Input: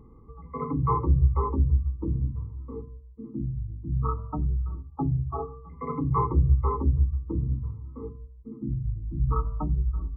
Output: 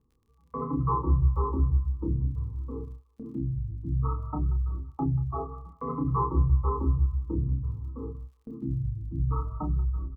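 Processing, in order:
Butterworth low-pass 1,800 Hz 72 dB per octave
noise gate with hold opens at −34 dBFS
in parallel at +2 dB: downward compressor, threshold −31 dBFS, peak gain reduction 15.5 dB
on the sum: surface crackle 28 per second −49 dBFS
double-tracking delay 30 ms −5 dB
on a send: delay with a high-pass on its return 185 ms, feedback 30%, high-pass 1,400 Hz, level −11 dB
on the sum: level −7 dB

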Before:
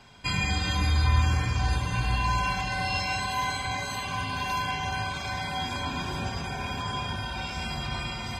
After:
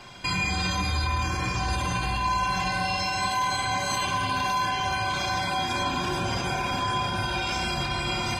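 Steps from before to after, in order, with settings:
parametric band 61 Hz −6.5 dB 2.3 octaves
brickwall limiter −27 dBFS, peak gain reduction 11 dB
on a send: convolution reverb RT60 0.30 s, pre-delay 3 ms, DRR 5 dB
on the sum: level +7.5 dB

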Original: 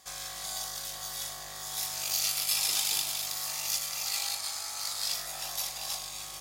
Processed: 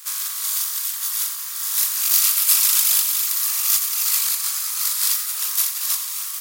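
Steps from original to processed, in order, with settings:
compressing power law on the bin magnitudes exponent 0.46
surface crackle 430 per second −41 dBFS
in parallel at −4 dB: soft clipping −30.5 dBFS, distortion −10 dB
on the sum: RIAA equalisation recording
reverb reduction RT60 1.1 s
low shelf with overshoot 800 Hz −11.5 dB, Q 3
on a send: feedback echo with a high-pass in the loop 88 ms, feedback 82%, high-pass 200 Hz, level −11 dB
on the sum: level −1 dB

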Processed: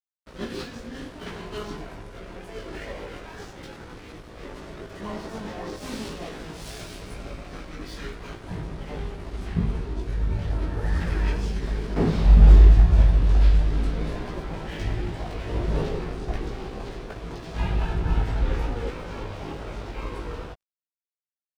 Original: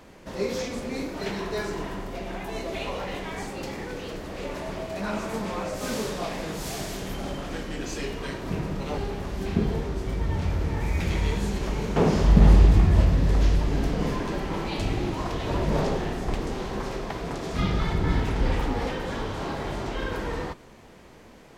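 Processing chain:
dead-zone distortion −38 dBFS
multi-voice chorus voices 6, 0.76 Hz, delay 18 ms, depth 1.6 ms
formants moved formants −5 semitones
level +1.5 dB

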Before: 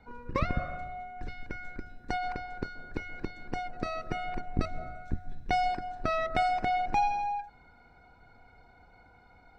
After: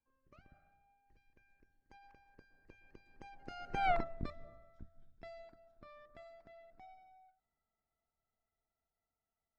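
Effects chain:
source passing by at 0:03.90, 31 m/s, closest 1.6 metres
dynamic equaliser 980 Hz, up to +6 dB, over −52 dBFS, Q 1.2
level +3.5 dB

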